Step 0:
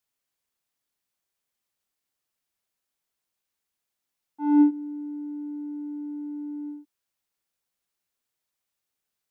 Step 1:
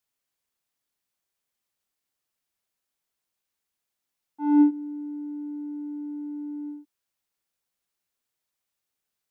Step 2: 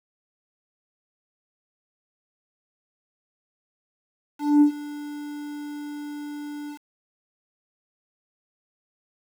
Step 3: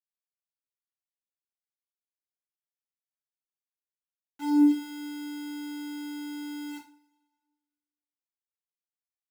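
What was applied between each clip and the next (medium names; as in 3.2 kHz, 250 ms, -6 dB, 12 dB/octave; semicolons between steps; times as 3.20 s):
no audible change
small samples zeroed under -37.5 dBFS
two-slope reverb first 0.33 s, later 1.5 s, from -27 dB, DRR -9 dB; trim -7.5 dB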